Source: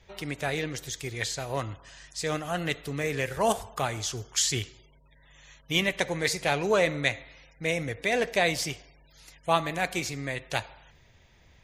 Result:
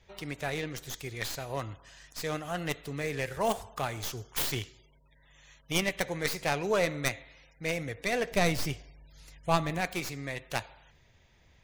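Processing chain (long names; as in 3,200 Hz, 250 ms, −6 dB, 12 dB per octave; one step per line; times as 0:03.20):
stylus tracing distortion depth 0.21 ms
0:08.31–0:09.81: low-shelf EQ 230 Hz +10 dB
level −4 dB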